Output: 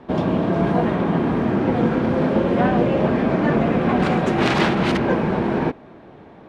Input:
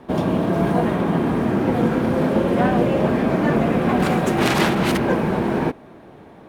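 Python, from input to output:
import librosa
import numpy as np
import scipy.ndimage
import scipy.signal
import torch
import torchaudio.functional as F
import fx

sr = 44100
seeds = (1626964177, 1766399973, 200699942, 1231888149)

y = scipy.signal.sosfilt(scipy.signal.butter(2, 4900.0, 'lowpass', fs=sr, output='sos'), x)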